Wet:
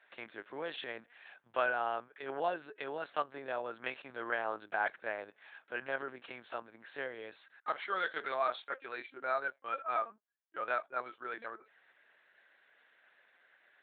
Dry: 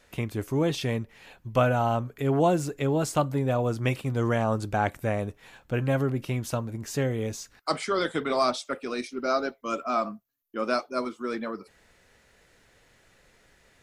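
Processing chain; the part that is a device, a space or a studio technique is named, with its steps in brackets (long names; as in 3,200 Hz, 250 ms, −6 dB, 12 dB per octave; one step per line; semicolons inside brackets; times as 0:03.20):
talking toy (linear-prediction vocoder at 8 kHz pitch kept; high-pass filter 590 Hz 12 dB per octave; parametric band 1,600 Hz +9 dB 0.42 octaves)
level −7.5 dB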